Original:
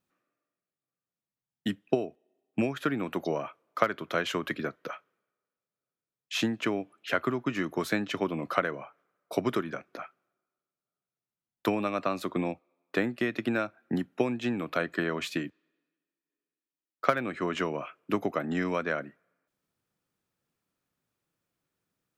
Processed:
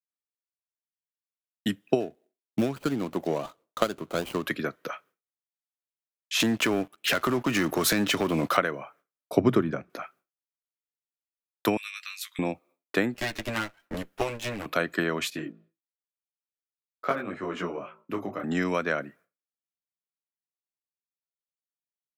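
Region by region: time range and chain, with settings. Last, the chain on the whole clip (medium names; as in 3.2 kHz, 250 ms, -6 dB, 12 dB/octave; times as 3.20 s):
2.00–4.46 s: median filter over 25 samples + short-mantissa float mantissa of 8-bit
6.40–8.57 s: compression 3:1, threshold -35 dBFS + waveshaping leveller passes 3
9.32–9.90 s: tilt EQ -3 dB/octave + hum notches 60/120/180 Hz
11.77–12.39 s: inverse Chebyshev high-pass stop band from 620 Hz, stop band 60 dB + doubling 17 ms -5 dB
13.14–14.66 s: comb filter that takes the minimum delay 9.9 ms + bass shelf 410 Hz -7 dB
15.30–18.44 s: treble shelf 2.7 kHz -10 dB + de-hum 54.86 Hz, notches 26 + detune thickener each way 17 cents
whole clip: expander -55 dBFS; treble shelf 6.2 kHz +9.5 dB; trim +2.5 dB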